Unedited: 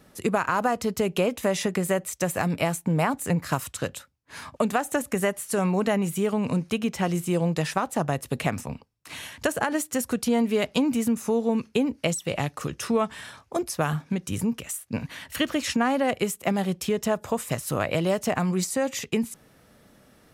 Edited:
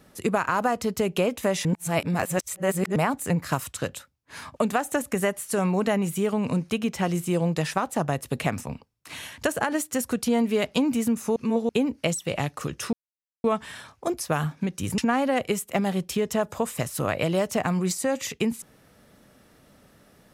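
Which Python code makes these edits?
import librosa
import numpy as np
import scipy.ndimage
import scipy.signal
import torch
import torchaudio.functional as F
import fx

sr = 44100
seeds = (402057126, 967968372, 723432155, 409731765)

y = fx.edit(x, sr, fx.reverse_span(start_s=1.65, length_s=1.31),
    fx.reverse_span(start_s=11.36, length_s=0.33),
    fx.insert_silence(at_s=12.93, length_s=0.51),
    fx.cut(start_s=14.47, length_s=1.23), tone=tone)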